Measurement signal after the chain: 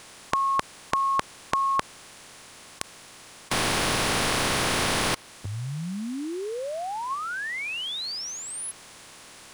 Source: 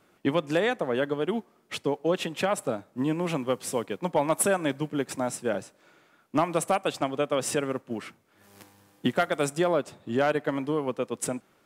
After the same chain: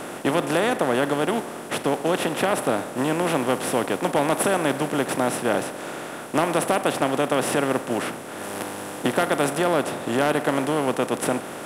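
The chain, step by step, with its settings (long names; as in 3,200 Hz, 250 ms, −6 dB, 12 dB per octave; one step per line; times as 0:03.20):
compressor on every frequency bin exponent 0.4
dynamic equaliser 7,300 Hz, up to −5 dB, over −40 dBFS, Q 1.9
level −1.5 dB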